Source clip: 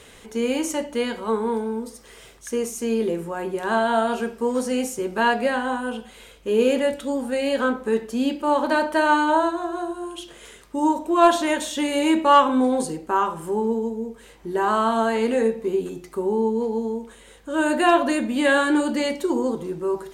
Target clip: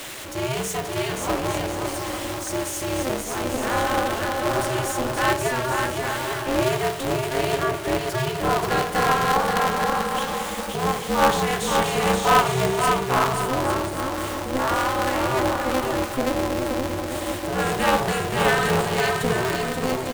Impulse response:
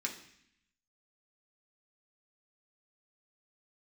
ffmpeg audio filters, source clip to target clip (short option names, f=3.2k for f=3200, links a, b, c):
-af "aeval=exprs='val(0)+0.5*0.0447*sgn(val(0))':c=same,highpass=f=150:w=0.5412,highpass=f=150:w=1.3066,lowshelf=f=190:g=-10,aecho=1:1:530|848|1039|1153|1222:0.631|0.398|0.251|0.158|0.1,aeval=exprs='val(0)*sgn(sin(2*PI*130*n/s))':c=same,volume=-3dB"